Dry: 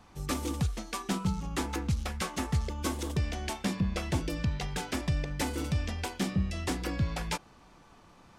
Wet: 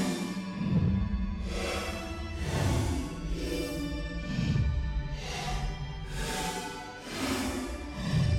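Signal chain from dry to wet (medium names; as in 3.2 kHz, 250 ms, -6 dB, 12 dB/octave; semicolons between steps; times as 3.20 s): Paulstretch 5.8×, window 0.10 s, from 3.68 s; hard clipper -20.5 dBFS, distortion -21 dB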